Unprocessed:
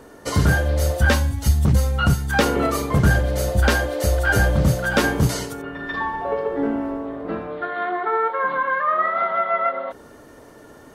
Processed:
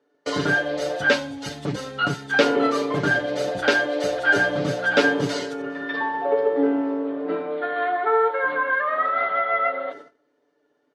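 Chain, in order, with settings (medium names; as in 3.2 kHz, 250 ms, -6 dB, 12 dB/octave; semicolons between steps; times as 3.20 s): Chebyshev band-pass 320–4100 Hz, order 2; band-stop 1.1 kHz, Q 18; comb 6.9 ms, depth 75%; echo from a far wall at 70 m, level -23 dB; gate -38 dBFS, range -24 dB; peaking EQ 1 kHz -3 dB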